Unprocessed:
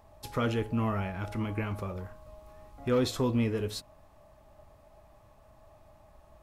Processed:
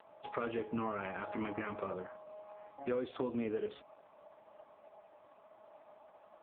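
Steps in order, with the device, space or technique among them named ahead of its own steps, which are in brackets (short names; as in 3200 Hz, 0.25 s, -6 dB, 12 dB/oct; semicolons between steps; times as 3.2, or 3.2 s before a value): voicemail (BPF 320–3100 Hz; compressor 8:1, threshold -36 dBFS, peak gain reduction 12.5 dB; gain +4 dB; AMR-NB 4.75 kbps 8000 Hz)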